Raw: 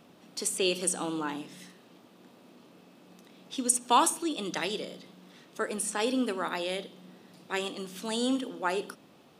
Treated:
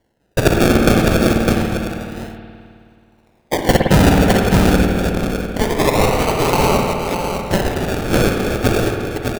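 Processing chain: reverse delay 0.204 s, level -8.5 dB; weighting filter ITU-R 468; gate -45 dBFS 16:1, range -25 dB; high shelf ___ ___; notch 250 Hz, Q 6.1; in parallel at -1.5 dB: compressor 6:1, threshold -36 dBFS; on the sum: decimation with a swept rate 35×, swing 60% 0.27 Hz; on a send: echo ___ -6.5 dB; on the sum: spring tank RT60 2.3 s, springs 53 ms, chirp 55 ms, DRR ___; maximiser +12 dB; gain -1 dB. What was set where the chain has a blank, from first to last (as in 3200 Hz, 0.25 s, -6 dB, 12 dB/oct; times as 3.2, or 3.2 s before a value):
10000 Hz, -10.5 dB, 0.605 s, 4 dB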